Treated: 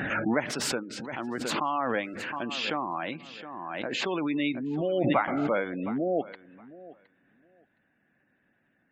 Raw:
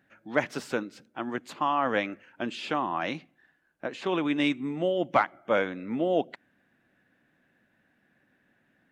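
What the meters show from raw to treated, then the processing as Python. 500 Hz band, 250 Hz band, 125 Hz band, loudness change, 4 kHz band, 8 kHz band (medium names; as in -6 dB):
-1.0 dB, +1.0 dB, +3.0 dB, -0.5 dB, +3.5 dB, no reading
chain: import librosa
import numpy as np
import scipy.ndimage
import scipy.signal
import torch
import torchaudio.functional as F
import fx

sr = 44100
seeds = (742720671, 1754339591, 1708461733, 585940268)

y = fx.spec_gate(x, sr, threshold_db=-25, keep='strong')
y = fx.echo_feedback(y, sr, ms=716, feedback_pct=16, wet_db=-19.5)
y = fx.pre_swell(y, sr, db_per_s=23.0)
y = y * 10.0 ** (-3.0 / 20.0)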